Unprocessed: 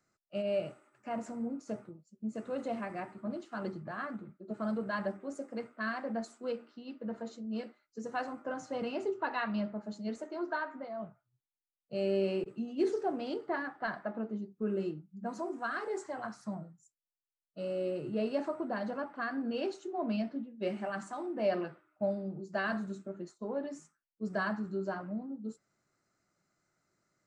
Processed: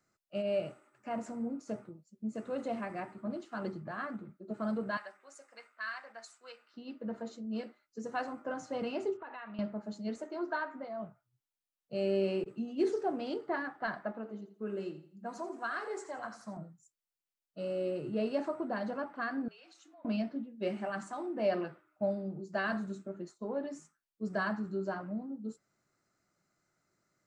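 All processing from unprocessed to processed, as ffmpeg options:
ffmpeg -i in.wav -filter_complex "[0:a]asettb=1/sr,asplit=3[link_01][link_02][link_03];[link_01]atrim=end=4.974[link_04];[link_02]atrim=start=4.97:end=6.74,asetpts=PTS-STARTPTS,afade=type=in:duration=0.004:curve=qsin,afade=type=out:start_time=1.766:duration=0.004:curve=qsin,highpass=1300,bandreject=frequency=3300:width=19[link_05];[link_03]atrim=start=6.736[link_06];[link_04][link_05]acrossfade=duration=0.004:curve1=hsin:curve2=qsin[link_07];[link_07][link_06]acrossfade=duration=0.004:curve1=qsin:curve2=hsin,asettb=1/sr,asplit=3[link_08][link_09][link_10];[link_08]atrim=end=9.174[link_11];[link_09]atrim=start=9.17:end=9.59,asetpts=PTS-STARTPTS,afade=type=in:duration=0.004:curve=qsin,afade=type=out:start_time=0.416:duration=0.004:curve=qsin,lowshelf=frequency=180:gain=-12,acompressor=threshold=-43dB:ratio=5:attack=3.2:release=140:knee=1:detection=peak,lowpass=frequency=3300:width=0.5412,lowpass=frequency=3300:width=1.3066[link_12];[link_10]atrim=start=9.586[link_13];[link_11][link_12]acrossfade=duration=0.004:curve1=hsin:curve2=qsin[link_14];[link_14][link_13]acrossfade=duration=0.004:curve1=qsin:curve2=hsin,asettb=1/sr,asplit=3[link_15][link_16][link_17];[link_15]atrim=end=14.124[link_18];[link_16]atrim=start=14.12:end=16.57,asetpts=PTS-STARTPTS,afade=type=in:duration=0.004:curve=qsin,afade=type=out:start_time=2.446:duration=0.004:curve=qsin,lowshelf=frequency=360:gain=-8.5,aecho=1:1:84|168|252|336:0.237|0.083|0.029|0.0102,atrim=end_sample=108045[link_19];[link_17]atrim=start=16.566[link_20];[link_18][link_19]acrossfade=duration=0.004:curve1=hsin:curve2=qsin[link_21];[link_21][link_20]acrossfade=duration=0.004:curve1=qsin:curve2=hsin,asettb=1/sr,asplit=3[link_22][link_23][link_24];[link_22]atrim=end=19.484[link_25];[link_23]atrim=start=19.48:end=20.05,asetpts=PTS-STARTPTS,afade=type=in:duration=0.004:curve=qsin,afade=type=out:start_time=0.566:duration=0.004:curve=qsin,highpass=1200,acompressor=threshold=-56dB:ratio=5:attack=3.2:release=140:knee=1:detection=peak,afreqshift=-58[link_26];[link_24]atrim=start=20.046[link_27];[link_25][link_26]acrossfade=duration=0.004:curve1=hsin:curve2=qsin[link_28];[link_28][link_27]acrossfade=duration=0.004:curve1=qsin:curve2=hsin" out.wav

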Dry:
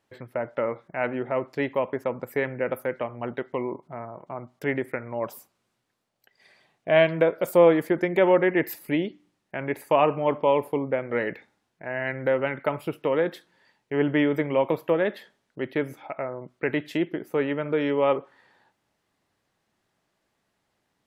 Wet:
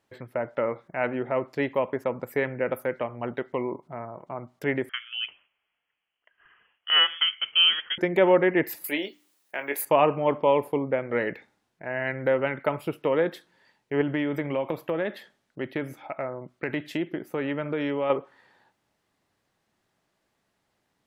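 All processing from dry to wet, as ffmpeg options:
ffmpeg -i in.wav -filter_complex "[0:a]asettb=1/sr,asplit=3[link_01][link_02][link_03];[link_01]atrim=end=4.894[link_04];[link_02]atrim=start=4.89:end=7.98,asetpts=PTS-STARTPTS,afade=type=in:duration=0.004:curve=qsin,afade=type=out:start_time=3.086:duration=0.004:curve=qsin,highpass=580,lowpass=frequency=3100:width_type=q:width=0.5098,lowpass=frequency=3100:width_type=q:width=0.6013,lowpass=frequency=3100:width_type=q:width=0.9,lowpass=frequency=3100:width_type=q:width=2.563,afreqshift=-3600[link_05];[link_03]atrim=start=7.976[link_06];[link_04][link_05]acrossfade=duration=0.004:curve1=hsin:curve2=qsin[link_07];[link_07][link_06]acrossfade=duration=0.004:curve1=qsin:curve2=hsin,asettb=1/sr,asplit=3[link_08][link_09][link_10];[link_08]atrim=end=8.844[link_11];[link_09]atrim=start=8.84:end=9.85,asetpts=PTS-STARTPTS,afade=type=in:duration=0.004:curve=qsin,afade=type=out:start_time=1.006:duration=0.004:curve=qsin,highpass=270,aemphasis=mode=production:type=riaa,asplit=2[link_12][link_13];[link_13]adelay=21,volume=-9dB[link_14];[link_12][link_14]amix=inputs=2:normalize=0,atrim=end_sample=44541[link_15];[link_10]atrim=start=9.846[link_16];[link_11][link_15]acrossfade=duration=0.004:curve1=hsin:curve2=qsin[link_17];[link_17][link_16]acrossfade=duration=0.004:curve1=qsin:curve2=hsin,asettb=1/sr,asplit=3[link_18][link_19][link_20];[link_18]atrim=end=14.014[link_21];[link_19]atrim=start=14.01:end=18.1,asetpts=PTS-STARTPTS,afade=type=in:duration=0.004:curve=qsin,afade=type=out:start_time=4.086:duration=0.004:curve=qsin,equalizer=frequency=440:width=5.5:gain=-4,acompressor=threshold=-24dB:ratio=2.5:attack=3.2:release=140:knee=1:detection=peak,bandreject=frequency=960:width=27[link_22];[link_20]atrim=start=18.096[link_23];[link_21][link_22]acrossfade=duration=0.004:curve1=hsin:curve2=qsin[link_24];[link_24][link_23]acrossfade=duration=0.004:curve1=qsin:curve2=hsin" out.wav

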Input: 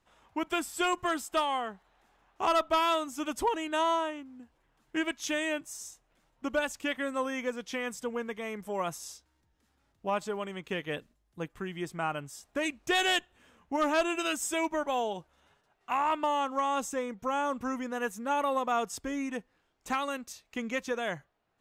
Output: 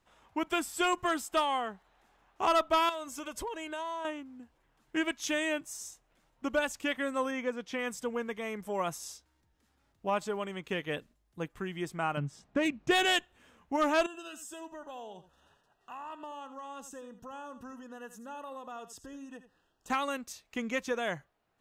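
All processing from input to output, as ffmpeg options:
ffmpeg -i in.wav -filter_complex "[0:a]asettb=1/sr,asplit=3[link_01][link_02][link_03];[link_01]atrim=end=2.894[link_04];[link_02]atrim=start=2.89:end=4.05,asetpts=PTS-STARTPTS,afade=type=in:duration=0.004:curve=qsin,afade=type=out:start_time=1.156:duration=0.004:curve=qsin,aecho=1:1:1.9:0.43,atrim=end_sample=51156,acompressor=threshold=-36dB:ratio=4:attack=3.2:release=140:knee=1:detection=peak[link_05];[link_03]atrim=start=4.046[link_06];[link_04][link_05]acrossfade=duration=0.004:curve1=hsin:curve2=qsin[link_07];[link_07][link_06]acrossfade=duration=0.004:curve1=qsin:curve2=hsin,asettb=1/sr,asplit=3[link_08][link_09][link_10];[link_08]atrim=end=7.314[link_11];[link_09]atrim=start=7.31:end=7.79,asetpts=PTS-STARTPTS,afade=type=in:duration=0.004:curve=qsin,afade=type=out:start_time=0.476:duration=0.004:curve=qsin,highpass=47,highshelf=frequency=4600:gain=-9.5[link_12];[link_10]atrim=start=7.786[link_13];[link_11][link_12]acrossfade=duration=0.004:curve1=hsin:curve2=qsin[link_14];[link_14][link_13]acrossfade=duration=0.004:curve1=qsin:curve2=hsin,asettb=1/sr,asplit=3[link_15][link_16][link_17];[link_15]atrim=end=12.174[link_18];[link_16]atrim=start=12.17:end=13.05,asetpts=PTS-STARTPTS,afade=type=in:duration=0.004:curve=qsin,afade=type=out:start_time=0.876:duration=0.004:curve=qsin,equalizer=frequency=170:width_type=o:width=1.2:gain=13.5,adynamicsmooth=sensitivity=5:basefreq=4400[link_19];[link_17]atrim=start=13.046[link_20];[link_18][link_19]acrossfade=duration=0.004:curve1=hsin:curve2=qsin[link_21];[link_21][link_20]acrossfade=duration=0.004:curve1=qsin:curve2=hsin,asettb=1/sr,asplit=3[link_22][link_23][link_24];[link_22]atrim=end=14.064[link_25];[link_23]atrim=start=14.06:end=19.9,asetpts=PTS-STARTPTS,afade=type=in:duration=0.004:curve=qsin,afade=type=out:start_time=5.836:duration=0.004:curve=qsin,acompressor=threshold=-53dB:ratio=2:attack=3.2:release=140:knee=1:detection=peak,asuperstop=centerf=2200:order=20:qfactor=4.1,aecho=1:1:83:0.224,atrim=end_sample=257544[link_26];[link_24]atrim=start=19.896[link_27];[link_25][link_26]acrossfade=duration=0.004:curve1=hsin:curve2=qsin[link_28];[link_28][link_27]acrossfade=duration=0.004:curve1=qsin:curve2=hsin" out.wav

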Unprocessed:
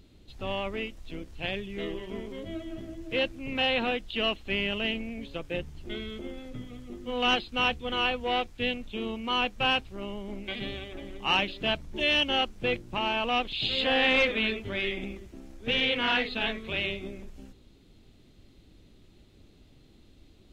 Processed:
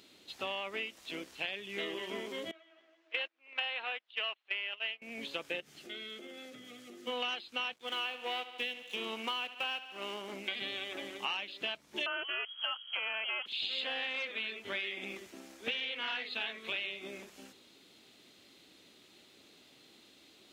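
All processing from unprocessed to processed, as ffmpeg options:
ffmpeg -i in.wav -filter_complex "[0:a]asettb=1/sr,asplit=3[link_01][link_02][link_03];[link_01]atrim=end=2.514[link_04];[link_02]atrim=start=2.51:end=5.02,asetpts=PTS-STARTPTS,afade=type=in:duration=0.004:curve=qsin,afade=type=out:start_time=2.506:duration=0.004:curve=qsin,agate=range=-21dB:threshold=-31dB:ratio=16:release=100:detection=peak,acontrast=57,highpass=710,lowpass=2900[link_05];[link_03]atrim=start=5.016[link_06];[link_04][link_05]acrossfade=duration=0.004:curve1=hsin:curve2=qsin[link_07];[link_07][link_06]acrossfade=duration=0.004:curve1=qsin:curve2=hsin,asettb=1/sr,asplit=3[link_08][link_09][link_10];[link_08]atrim=end=5.604[link_11];[link_09]atrim=start=5.6:end=7.07,asetpts=PTS-STARTPTS,afade=type=in:duration=0.004:curve=qsin,afade=type=out:start_time=1.466:duration=0.004:curve=qsin,highpass=120,equalizer=frequency=960:width_type=o:width=0.24:gain=-14,acompressor=threshold=-45dB:ratio=3:attack=3.2:release=140:knee=1:detection=peak[link_12];[link_10]atrim=start=7.066[link_13];[link_11][link_12]acrossfade=duration=0.004:curve1=hsin:curve2=qsin[link_14];[link_14][link_13]acrossfade=duration=0.004:curve1=qsin:curve2=hsin,asettb=1/sr,asplit=3[link_15][link_16][link_17];[link_15]atrim=end=7.734[link_18];[link_16]atrim=start=7.73:end=10.34,asetpts=PTS-STARTPTS,afade=type=in:duration=0.004:curve=qsin,afade=type=out:start_time=2.606:duration=0.004:curve=qsin,highpass=frequency=130:poles=1,aeval=exprs='sgn(val(0))*max(abs(val(0))-0.00316,0)':channel_layout=same,aecho=1:1:72|144|216|288|360:0.168|0.0907|0.049|0.0264|0.0143,atrim=end_sample=115101[link_19];[link_17]atrim=start=10.336[link_20];[link_18][link_19]acrossfade=duration=0.004:curve1=hsin:curve2=qsin[link_21];[link_21][link_20]acrossfade=duration=0.004:curve1=qsin:curve2=hsin,asettb=1/sr,asplit=3[link_22][link_23][link_24];[link_22]atrim=end=12.064[link_25];[link_23]atrim=start=12.06:end=13.46,asetpts=PTS-STARTPTS,afade=type=in:duration=0.004:curve=qsin,afade=type=out:start_time=1.396:duration=0.004:curve=qsin,equalizer=frequency=1900:width_type=o:width=0.27:gain=14.5,lowpass=frequency=2800:width_type=q:width=0.5098,lowpass=frequency=2800:width_type=q:width=0.6013,lowpass=frequency=2800:width_type=q:width=0.9,lowpass=frequency=2800:width_type=q:width=2.563,afreqshift=-3300[link_26];[link_24]atrim=start=13.456[link_27];[link_25][link_26]acrossfade=duration=0.004:curve1=hsin:curve2=qsin[link_28];[link_28][link_27]acrossfade=duration=0.004:curve1=qsin:curve2=hsin,highpass=250,tiltshelf=frequency=680:gain=-6,acompressor=threshold=-35dB:ratio=12,volume=1.5dB" out.wav

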